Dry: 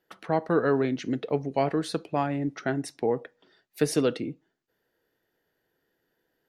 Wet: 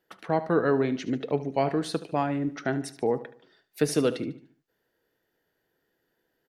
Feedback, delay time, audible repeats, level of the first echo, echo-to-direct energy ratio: 41%, 74 ms, 3, -15.5 dB, -14.5 dB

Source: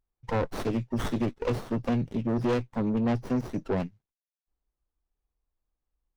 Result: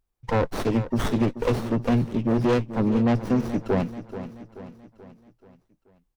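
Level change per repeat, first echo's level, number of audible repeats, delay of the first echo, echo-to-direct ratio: -6.0 dB, -12.5 dB, 4, 432 ms, -11.5 dB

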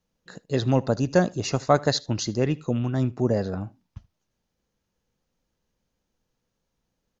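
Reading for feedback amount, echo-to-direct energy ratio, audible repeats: no regular repeats, -23.0 dB, 1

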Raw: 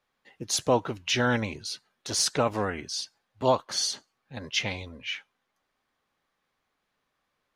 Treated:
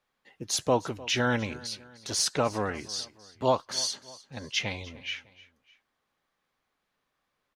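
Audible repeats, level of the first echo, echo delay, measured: 2, -20.0 dB, 303 ms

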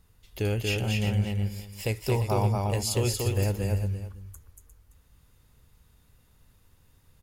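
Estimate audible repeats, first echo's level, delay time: 3, -3.0 dB, 234 ms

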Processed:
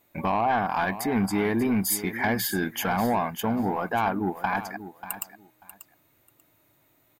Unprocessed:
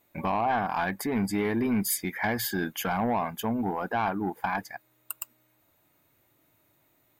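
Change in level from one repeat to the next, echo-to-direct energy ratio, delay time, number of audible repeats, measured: -15.0 dB, -13.0 dB, 589 ms, 2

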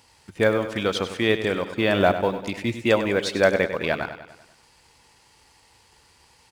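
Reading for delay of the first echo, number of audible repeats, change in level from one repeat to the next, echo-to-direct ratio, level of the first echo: 98 ms, 5, -5.5 dB, -9.5 dB, -11.0 dB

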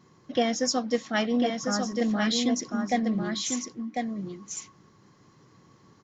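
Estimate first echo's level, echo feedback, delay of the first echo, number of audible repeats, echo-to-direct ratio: -4.5 dB, no regular repeats, 1047 ms, 1, -4.5 dB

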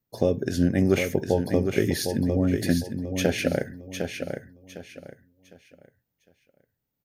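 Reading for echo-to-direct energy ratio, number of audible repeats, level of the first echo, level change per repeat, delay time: -6.0 dB, 3, -6.5 dB, -10.5 dB, 756 ms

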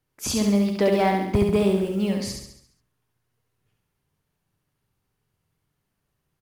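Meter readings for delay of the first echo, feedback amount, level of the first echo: 69 ms, 52%, -4.0 dB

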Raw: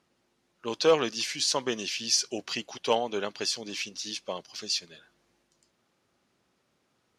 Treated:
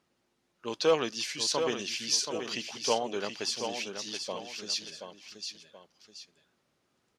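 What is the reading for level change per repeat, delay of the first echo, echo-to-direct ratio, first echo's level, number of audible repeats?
-8.5 dB, 728 ms, -6.5 dB, -7.0 dB, 2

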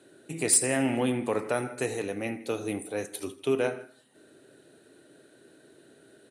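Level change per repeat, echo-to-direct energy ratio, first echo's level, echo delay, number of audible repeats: -4.5 dB, -17.5 dB, -19.0 dB, 81 ms, 2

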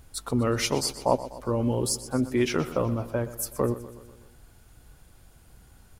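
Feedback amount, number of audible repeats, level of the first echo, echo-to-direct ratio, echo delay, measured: 56%, 4, -15.0 dB, -13.5 dB, 124 ms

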